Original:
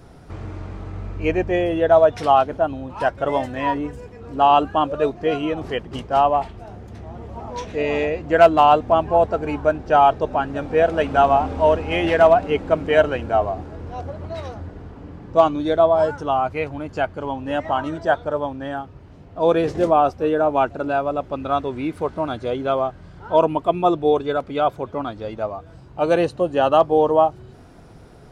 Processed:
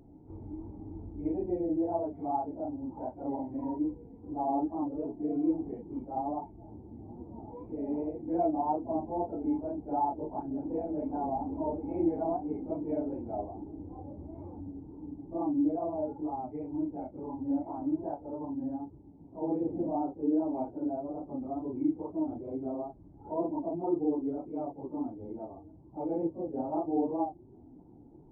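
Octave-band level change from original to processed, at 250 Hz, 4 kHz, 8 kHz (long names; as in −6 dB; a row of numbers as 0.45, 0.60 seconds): −5.0 dB, below −40 dB, can't be measured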